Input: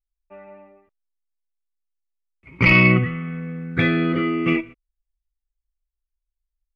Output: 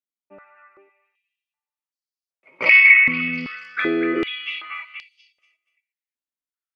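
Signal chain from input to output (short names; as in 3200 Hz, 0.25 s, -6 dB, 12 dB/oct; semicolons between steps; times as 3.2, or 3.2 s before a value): delay with a stepping band-pass 0.239 s, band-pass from 1700 Hz, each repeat 0.7 oct, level -1 dB; stepped high-pass 2.6 Hz 250–4700 Hz; gain -5 dB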